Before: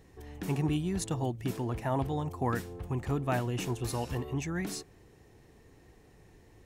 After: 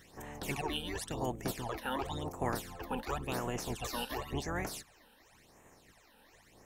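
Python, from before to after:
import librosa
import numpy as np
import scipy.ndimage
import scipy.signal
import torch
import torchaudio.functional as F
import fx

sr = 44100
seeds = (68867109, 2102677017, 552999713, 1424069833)

y = fx.spec_clip(x, sr, under_db=22)
y = fx.phaser_stages(y, sr, stages=12, low_hz=110.0, high_hz=4600.0, hz=0.93, feedback_pct=30)
y = fx.rider(y, sr, range_db=4, speed_s=0.5)
y = y * 10.0 ** (-2.5 / 20.0)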